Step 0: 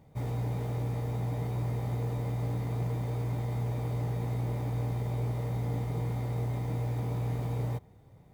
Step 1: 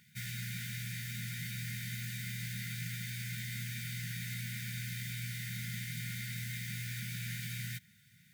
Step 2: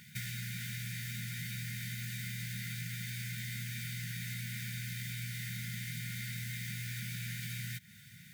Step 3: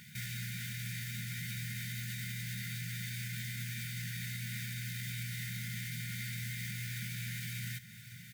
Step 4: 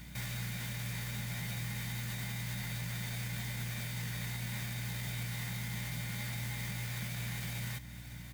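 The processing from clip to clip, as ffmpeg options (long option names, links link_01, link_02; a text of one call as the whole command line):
ffmpeg -i in.wav -af "highpass=180,afftfilt=real='re*(1-between(b*sr/4096,230,1400))':imag='im*(1-between(b*sr/4096,230,1400))':win_size=4096:overlap=0.75,tiltshelf=frequency=820:gain=-7.5,volume=4.5dB" out.wav
ffmpeg -i in.wav -af "acompressor=threshold=-47dB:ratio=6,volume=9dB" out.wav
ffmpeg -i in.wav -af "alimiter=level_in=9dB:limit=-24dB:level=0:latency=1:release=24,volume=-9dB,aecho=1:1:1148:0.178,volume=1.5dB" out.wav
ffmpeg -i in.wav -filter_complex "[0:a]aeval=exprs='val(0)+0.00251*(sin(2*PI*60*n/s)+sin(2*PI*2*60*n/s)/2+sin(2*PI*3*60*n/s)/3+sin(2*PI*4*60*n/s)/4+sin(2*PI*5*60*n/s)/5)':channel_layout=same,asplit=2[link_01][link_02];[link_02]acrusher=samples=15:mix=1:aa=0.000001,volume=-9.5dB[link_03];[link_01][link_03]amix=inputs=2:normalize=0" out.wav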